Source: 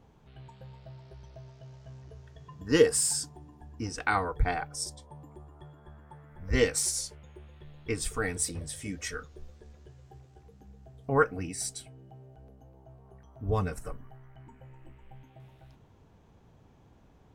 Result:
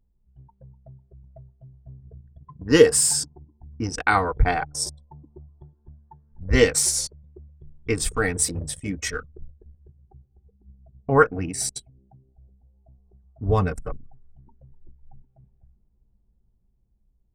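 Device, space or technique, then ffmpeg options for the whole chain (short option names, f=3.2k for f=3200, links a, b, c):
voice memo with heavy noise removal: -af "anlmdn=0.398,dynaudnorm=f=620:g=5:m=4.5dB,volume=3.5dB"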